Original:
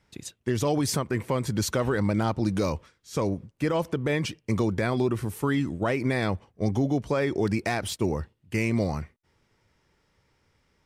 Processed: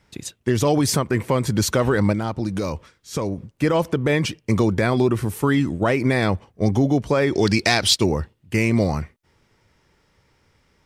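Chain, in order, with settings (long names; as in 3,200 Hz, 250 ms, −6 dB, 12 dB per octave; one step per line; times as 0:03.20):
0:02.12–0:03.38: downward compressor 3 to 1, threshold −29 dBFS, peak gain reduction 7 dB
0:07.33–0:08.04: parametric band 4,400 Hz +13.5 dB 1.5 octaves
level +6.5 dB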